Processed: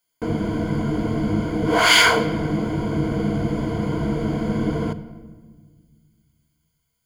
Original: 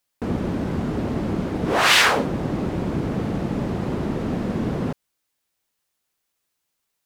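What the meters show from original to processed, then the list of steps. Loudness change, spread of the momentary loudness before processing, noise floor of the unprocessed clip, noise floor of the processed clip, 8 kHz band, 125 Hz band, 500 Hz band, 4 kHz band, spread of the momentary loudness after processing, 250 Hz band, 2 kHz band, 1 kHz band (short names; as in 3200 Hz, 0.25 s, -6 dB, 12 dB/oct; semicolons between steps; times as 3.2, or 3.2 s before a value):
+1.5 dB, 11 LU, -77 dBFS, -74 dBFS, +1.0 dB, +2.0 dB, +2.0 dB, +2.0 dB, 12 LU, +2.0 dB, +1.5 dB, +1.0 dB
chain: ripple EQ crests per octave 1.8, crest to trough 15 dB; shoebox room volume 1800 m³, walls mixed, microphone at 0.51 m; gain -1.5 dB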